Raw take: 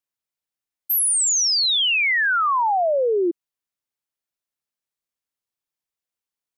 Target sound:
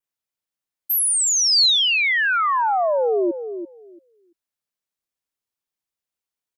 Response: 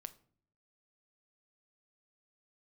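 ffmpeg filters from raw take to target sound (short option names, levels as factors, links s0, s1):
-filter_complex "[0:a]asplit=2[s0][s1];[s1]adelay=339,lowpass=f=880:p=1,volume=0.355,asplit=2[s2][s3];[s3]adelay=339,lowpass=f=880:p=1,volume=0.19,asplit=2[s4][s5];[s5]adelay=339,lowpass=f=880:p=1,volume=0.19[s6];[s2][s4][s6]amix=inputs=3:normalize=0[s7];[s0][s7]amix=inputs=2:normalize=0,adynamicequalizer=threshold=0.0224:dfrequency=4300:dqfactor=2.8:tfrequency=4300:tqfactor=2.8:attack=5:release=100:ratio=0.375:range=2.5:mode=boostabove:tftype=bell"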